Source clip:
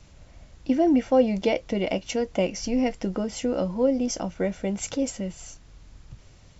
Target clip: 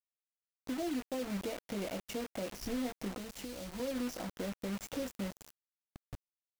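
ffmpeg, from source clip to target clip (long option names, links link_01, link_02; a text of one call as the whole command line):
ffmpeg -i in.wav -filter_complex "[0:a]asplit=2[link_01][link_02];[link_02]adelay=20,volume=-7dB[link_03];[link_01][link_03]amix=inputs=2:normalize=0,aecho=1:1:344|688:0.0631|0.0133,agate=range=-33dB:threshold=-37dB:ratio=3:detection=peak,acompressor=threshold=-40dB:ratio=2,highshelf=frequency=2300:gain=-9,alimiter=level_in=4.5dB:limit=-24dB:level=0:latency=1:release=163,volume=-4.5dB,acrusher=bits=6:mix=0:aa=0.000001,asettb=1/sr,asplit=3[link_04][link_05][link_06];[link_04]atrim=end=3.174[link_07];[link_05]atrim=start=3.17:end=3.8,asetpts=PTS-STARTPTS,afade=type=in:duration=0.004:curve=qsin,afade=type=out:start_time=0.626:duration=0.004:curve=qsin,acrossover=split=140|3000[link_08][link_09][link_10];[link_09]acompressor=threshold=-42dB:ratio=6[link_11];[link_08][link_11][link_10]amix=inputs=3:normalize=0[link_12];[link_06]atrim=start=3.796[link_13];[link_07][link_12]acrossfade=duration=0.004:curve1=hsin:curve2=qsin[link_14];[link_14][link_13]acrossfade=duration=0.004:curve1=qsin:curve2=hsin,volume=-1dB" out.wav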